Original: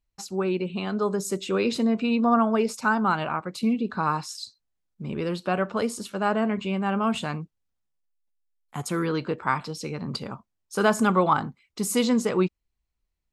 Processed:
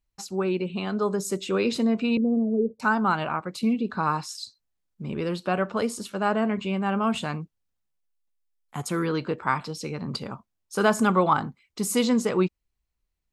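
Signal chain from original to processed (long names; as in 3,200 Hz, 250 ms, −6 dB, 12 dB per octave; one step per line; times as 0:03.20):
0:02.17–0:02.80: elliptic low-pass filter 510 Hz, stop band 70 dB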